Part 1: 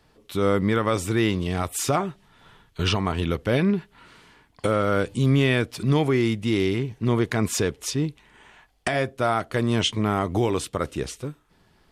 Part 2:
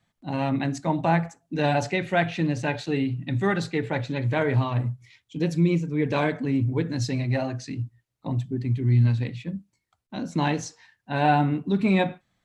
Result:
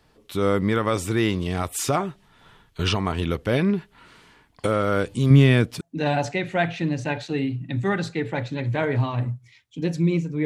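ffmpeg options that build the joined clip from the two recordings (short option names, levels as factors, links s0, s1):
-filter_complex "[0:a]asettb=1/sr,asplit=3[s0][s1][s2];[s0]atrim=end=5.304[s3];[s1]atrim=start=5.3:end=5.81,asetpts=PTS-STARTPTS,afade=t=in:d=0.004:c=qsin,afade=t=out:st=0.506:d=0.004:c=qsin,equalizer=f=160:w=1:g=9[s4];[s2]atrim=start=5.806[s5];[s3][s4]acrossfade=d=0.004:c1=hsin:c2=qsin[s6];[s6][s5]acrossfade=d=0.004:c1=qsin:c2=hsin,apad=whole_dur=10.45,atrim=end=10.45,atrim=end=5.812[s7];[1:a]atrim=start=1.388:end=6.03[s8];[s7][s8]acrossfade=d=0.004:c1=hsin:c2=hsin"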